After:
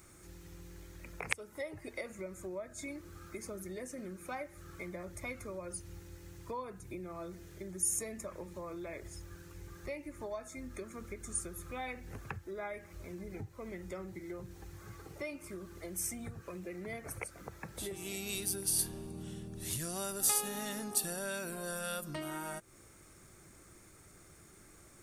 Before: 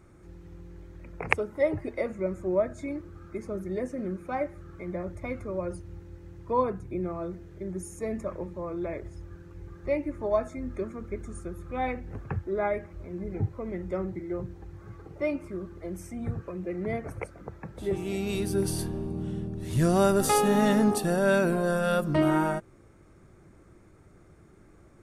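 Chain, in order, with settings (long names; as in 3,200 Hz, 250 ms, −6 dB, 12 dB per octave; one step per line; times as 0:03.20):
downward compressor 5 to 1, threshold −36 dBFS, peak gain reduction 17.5 dB
first-order pre-emphasis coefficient 0.9
level +14 dB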